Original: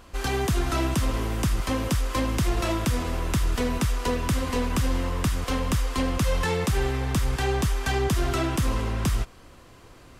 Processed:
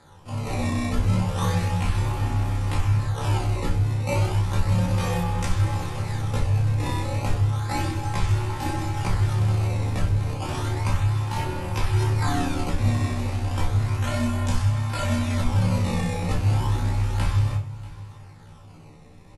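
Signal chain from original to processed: peaking EQ 1.1 kHz +3.5 dB 0.77 oct; decimation with a swept rate 15×, swing 160% 0.62 Hz; granular stretch 1.9×, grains 63 ms; flange 0.89 Hz, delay 0 ms, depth 4.5 ms, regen -75%; frequency shift -160 Hz; brick-wall FIR low-pass 12 kHz; feedback delay 637 ms, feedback 37%, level -20 dB; simulated room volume 310 m³, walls furnished, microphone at 2.1 m

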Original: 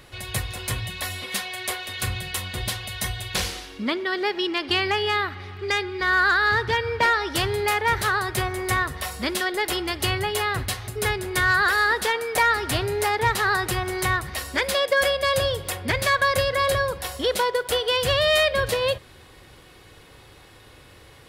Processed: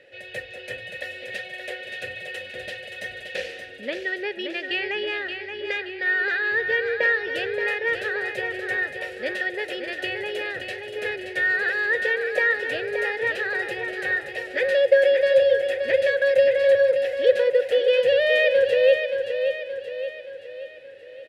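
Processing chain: vowel filter e; on a send: feedback delay 575 ms, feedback 49%, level -7 dB; on the sum: trim +8.5 dB

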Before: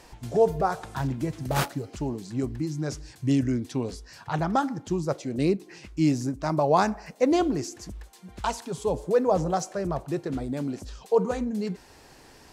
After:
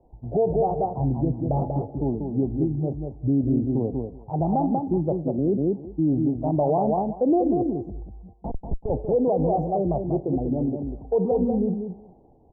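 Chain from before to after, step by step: 8.33–8.90 s: Schmitt trigger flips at -26 dBFS; elliptic low-pass 790 Hz, stop band 50 dB; feedback delay 191 ms, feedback 17%, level -5 dB; peak limiter -20.5 dBFS, peak gain reduction 10 dB; three bands expanded up and down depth 40%; trim +6 dB

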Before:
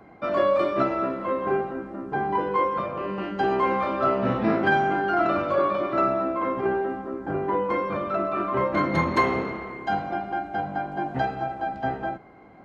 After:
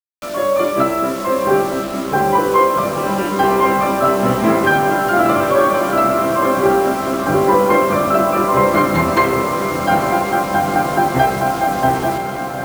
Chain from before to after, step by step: level rider gain up to 16 dB; bit crusher 5-bit; on a send: echo that smears into a reverb 928 ms, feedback 72%, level -8 dB; on the sum: trim -1.5 dB

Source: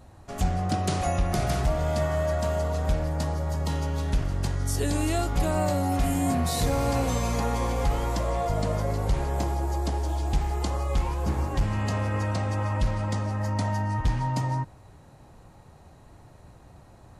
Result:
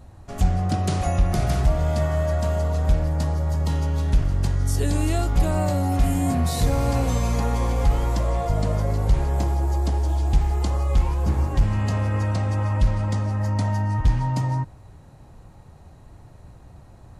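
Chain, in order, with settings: bass shelf 160 Hz +7.5 dB

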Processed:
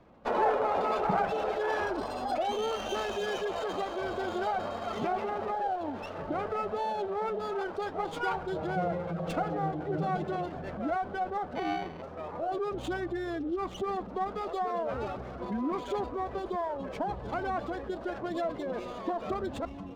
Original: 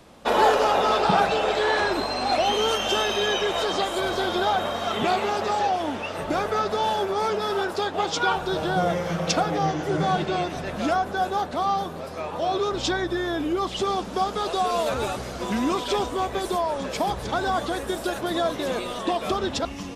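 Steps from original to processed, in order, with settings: spectral gate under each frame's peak -20 dB strong; thinning echo 684 ms, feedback 85%, high-pass 550 Hz, level -21.5 dB; 11.55–12.02 s: sample-rate reducer 1.5 kHz, jitter 0%; distance through air 280 m; sliding maximum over 5 samples; trim -6.5 dB

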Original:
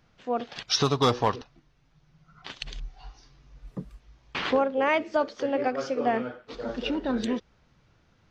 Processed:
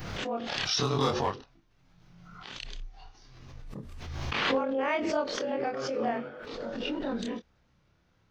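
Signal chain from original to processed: short-time spectra conjugated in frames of 60 ms; swell ahead of each attack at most 29 dB/s; trim -2.5 dB

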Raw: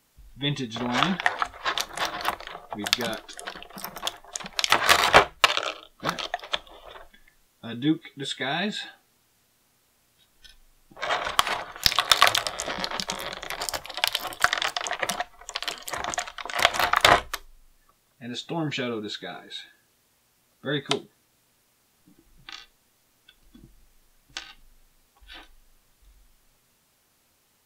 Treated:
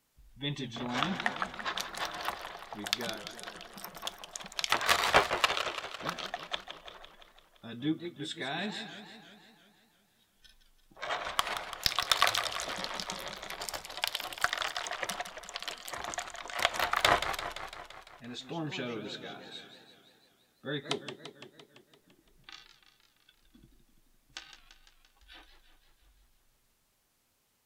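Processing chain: modulated delay 170 ms, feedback 64%, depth 211 cents, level -10 dB; trim -8.5 dB

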